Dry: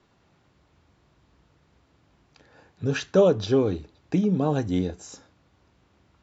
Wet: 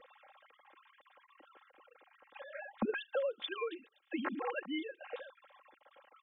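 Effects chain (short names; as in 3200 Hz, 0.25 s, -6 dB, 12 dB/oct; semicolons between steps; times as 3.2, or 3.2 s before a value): sine-wave speech; 2.95–5.01 differentiator; comb 3.7 ms, depth 92%; compressor 8:1, threshold -44 dBFS, peak gain reduction 16 dB; gain +11.5 dB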